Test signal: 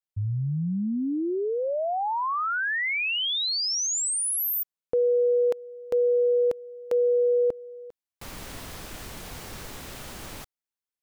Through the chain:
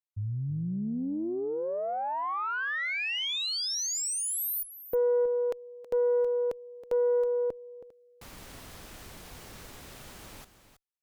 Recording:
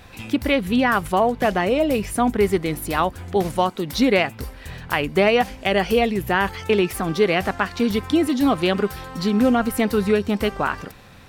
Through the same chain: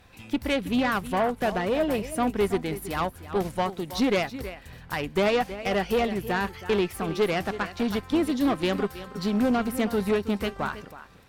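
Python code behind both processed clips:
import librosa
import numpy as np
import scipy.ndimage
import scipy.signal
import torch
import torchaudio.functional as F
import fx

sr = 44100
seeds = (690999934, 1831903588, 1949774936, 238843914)

y = x + 10.0 ** (-12.0 / 20.0) * np.pad(x, (int(322 * sr / 1000.0), 0))[:len(x)]
y = fx.tube_stage(y, sr, drive_db=15.0, bias=0.3)
y = fx.upward_expand(y, sr, threshold_db=-33.0, expansion=1.5)
y = y * librosa.db_to_amplitude(-1.5)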